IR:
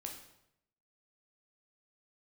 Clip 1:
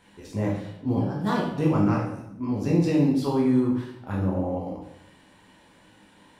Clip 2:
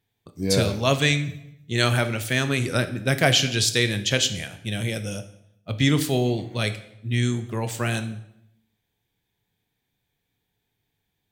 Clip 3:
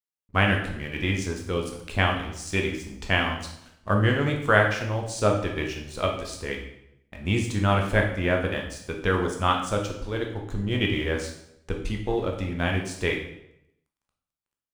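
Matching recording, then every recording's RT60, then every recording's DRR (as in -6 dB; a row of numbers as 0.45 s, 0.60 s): 3; 0.80 s, 0.80 s, 0.80 s; -4.5 dB, 9.0 dB, 1.0 dB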